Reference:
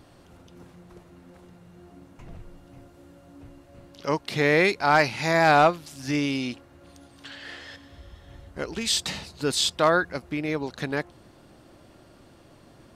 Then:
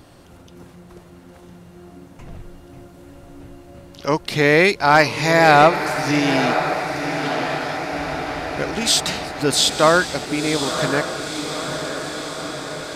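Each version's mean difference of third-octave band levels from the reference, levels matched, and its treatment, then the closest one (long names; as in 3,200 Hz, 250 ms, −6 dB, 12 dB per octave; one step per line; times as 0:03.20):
7.5 dB: high-shelf EQ 7,500 Hz +4 dB
feedback delay with all-pass diffusion 996 ms, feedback 69%, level −8 dB
level +6 dB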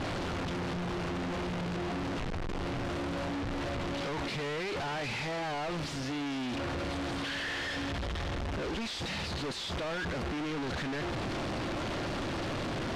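16.5 dB: sign of each sample alone
low-pass filter 4,100 Hz 12 dB per octave
level −6 dB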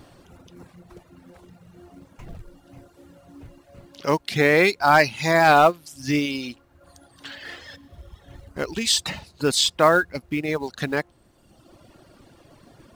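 3.5 dB: reverb reduction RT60 1.3 s
in parallel at −3.5 dB: floating-point word with a short mantissa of 2 bits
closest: third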